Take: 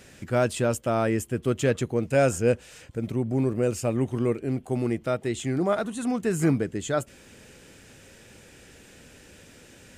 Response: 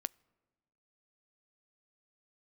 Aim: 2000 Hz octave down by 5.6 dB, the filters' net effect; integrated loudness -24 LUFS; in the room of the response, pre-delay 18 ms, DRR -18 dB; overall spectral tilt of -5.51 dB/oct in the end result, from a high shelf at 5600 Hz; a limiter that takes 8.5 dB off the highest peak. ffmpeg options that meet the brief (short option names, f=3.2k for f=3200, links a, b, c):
-filter_complex "[0:a]equalizer=f=2k:t=o:g=-8.5,highshelf=f=5.6k:g=3,alimiter=limit=-20dB:level=0:latency=1,asplit=2[a][b];[1:a]atrim=start_sample=2205,adelay=18[c];[b][c]afir=irnorm=-1:irlink=0,volume=19dB[d];[a][d]amix=inputs=2:normalize=0,volume=-12dB"